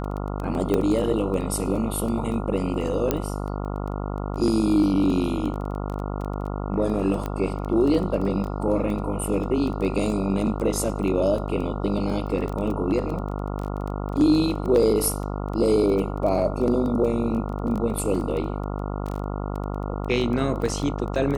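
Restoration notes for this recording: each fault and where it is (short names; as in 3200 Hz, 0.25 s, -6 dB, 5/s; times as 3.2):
buzz 50 Hz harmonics 28 -29 dBFS
crackle 12/s -28 dBFS
0.74 pop -11 dBFS
3.11 pop -7 dBFS
7.26 pop -16 dBFS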